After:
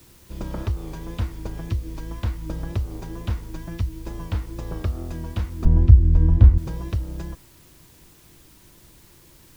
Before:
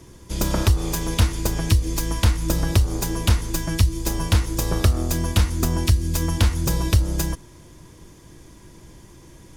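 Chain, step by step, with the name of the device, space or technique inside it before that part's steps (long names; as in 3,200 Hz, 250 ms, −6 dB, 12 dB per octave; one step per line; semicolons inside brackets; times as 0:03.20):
cassette deck with a dirty head (head-to-tape spacing loss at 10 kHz 26 dB; tape wow and flutter; white noise bed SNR 25 dB)
0:05.65–0:06.58: spectral tilt −4 dB per octave
level −7.5 dB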